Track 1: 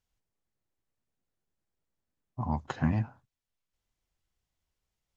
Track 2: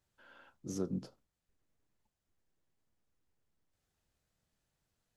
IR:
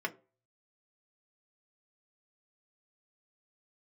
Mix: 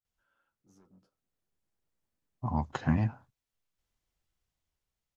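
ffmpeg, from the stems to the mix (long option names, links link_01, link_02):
-filter_complex "[0:a]dynaudnorm=framelen=480:gausssize=5:maxgain=5dB,adelay=50,volume=-4.5dB[link_01];[1:a]asoftclip=type=tanh:threshold=-36.5dB,equalizer=frequency=1300:width=3.7:gain=8.5,flanger=delay=8.5:depth=1.7:regen=39:speed=0.5:shape=triangular,volume=-17.5dB[link_02];[link_01][link_02]amix=inputs=2:normalize=0"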